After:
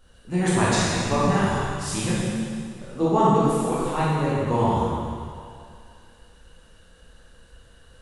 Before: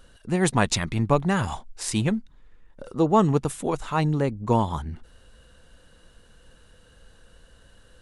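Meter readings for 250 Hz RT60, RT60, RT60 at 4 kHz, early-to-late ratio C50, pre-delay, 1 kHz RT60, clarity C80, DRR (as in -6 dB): 2.2 s, 2.3 s, 2.1 s, -4.0 dB, 10 ms, 2.4 s, -1.5 dB, -9.5 dB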